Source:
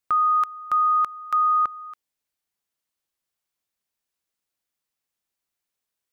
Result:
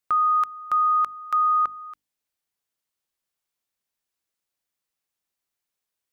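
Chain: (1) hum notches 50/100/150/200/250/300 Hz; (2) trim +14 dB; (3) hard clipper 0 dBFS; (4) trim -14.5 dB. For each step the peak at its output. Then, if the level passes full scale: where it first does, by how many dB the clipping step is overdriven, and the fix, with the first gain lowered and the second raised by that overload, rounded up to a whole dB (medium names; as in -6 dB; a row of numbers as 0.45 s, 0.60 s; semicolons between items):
-16.0 dBFS, -2.0 dBFS, -2.0 dBFS, -16.5 dBFS; nothing clips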